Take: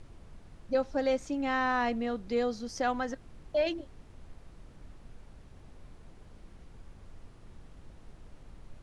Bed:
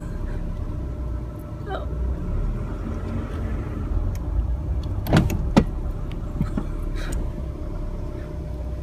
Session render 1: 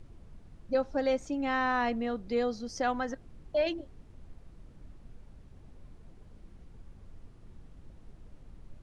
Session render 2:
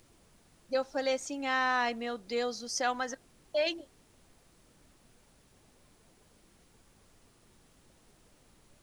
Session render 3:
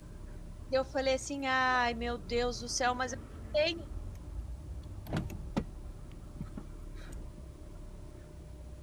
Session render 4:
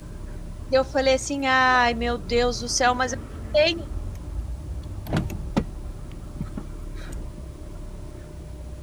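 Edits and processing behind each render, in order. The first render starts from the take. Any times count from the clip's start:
noise reduction 6 dB, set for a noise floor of -54 dBFS
RIAA curve recording
add bed -18 dB
trim +10.5 dB

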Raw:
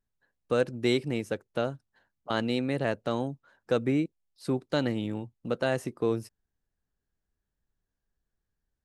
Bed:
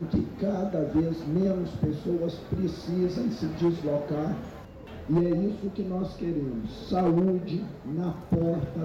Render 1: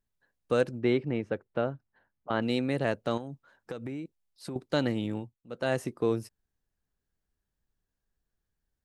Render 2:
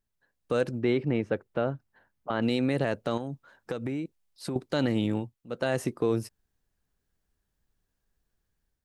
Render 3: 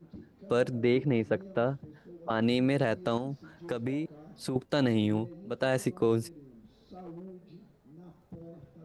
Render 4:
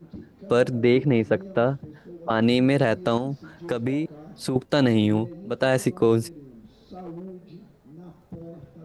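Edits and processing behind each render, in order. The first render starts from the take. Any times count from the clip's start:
0.79–2.42 s: low-pass 2.2 kHz; 3.17–4.56 s: compression 12:1, threshold -33 dBFS; 5.18–5.72 s: dip -17.5 dB, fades 0.24 s
level rider gain up to 5 dB; peak limiter -16 dBFS, peak gain reduction 6.5 dB
add bed -21.5 dB
trim +7 dB

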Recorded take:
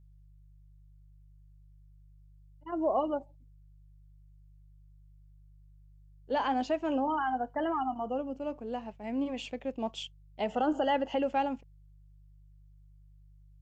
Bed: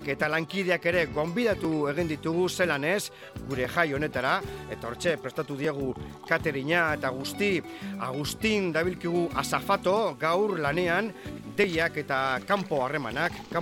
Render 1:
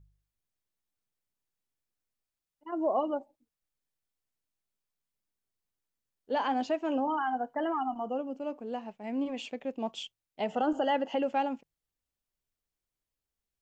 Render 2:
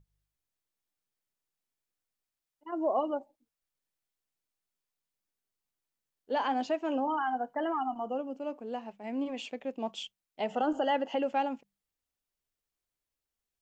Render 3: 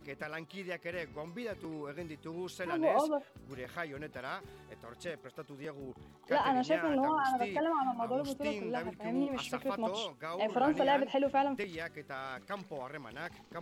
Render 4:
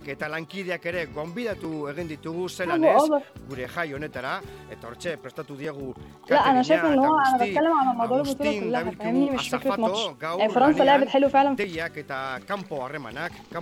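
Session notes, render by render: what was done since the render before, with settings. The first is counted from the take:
de-hum 50 Hz, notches 3
bass shelf 210 Hz -4 dB; hum notches 50/100/150/200 Hz
add bed -15 dB
trim +11 dB

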